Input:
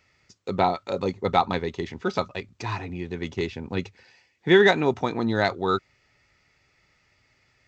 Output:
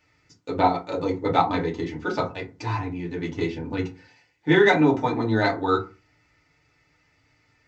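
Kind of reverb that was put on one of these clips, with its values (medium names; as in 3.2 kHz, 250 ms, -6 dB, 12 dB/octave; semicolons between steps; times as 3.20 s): FDN reverb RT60 0.31 s, low-frequency decay 1.25×, high-frequency decay 0.5×, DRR -3.5 dB; trim -4.5 dB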